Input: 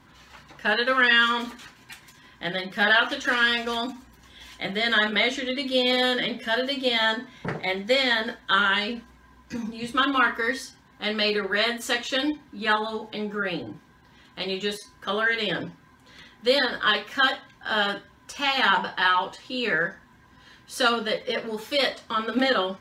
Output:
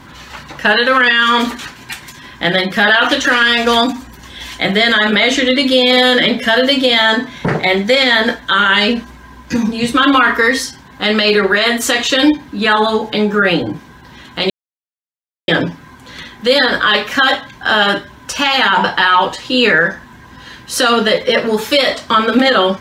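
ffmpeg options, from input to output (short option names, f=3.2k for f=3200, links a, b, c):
-filter_complex "[0:a]asplit=3[a][b][c];[a]atrim=end=14.5,asetpts=PTS-STARTPTS,afade=t=out:st=14.496:d=0.004:c=hsin[d];[b]atrim=start=14.5:end=15.48,asetpts=PTS-STARTPTS,volume=0[e];[c]atrim=start=15.48,asetpts=PTS-STARTPTS,afade=t=in:d=0.004:c=hsin[f];[d][e][f]concat=n=3:v=0:a=1,alimiter=level_in=17.5dB:limit=-1dB:release=50:level=0:latency=1,volume=-1dB"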